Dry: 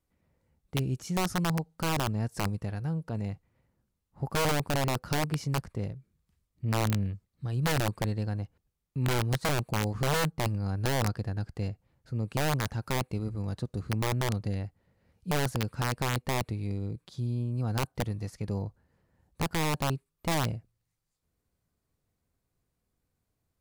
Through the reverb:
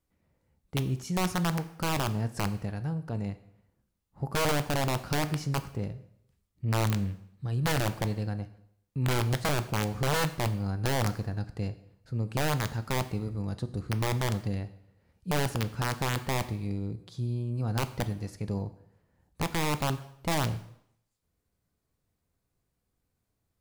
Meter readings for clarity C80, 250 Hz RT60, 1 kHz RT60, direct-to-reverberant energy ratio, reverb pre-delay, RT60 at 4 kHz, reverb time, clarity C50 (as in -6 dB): 17.0 dB, 0.70 s, 0.70 s, 11.0 dB, 4 ms, 0.65 s, 0.75 s, 15.0 dB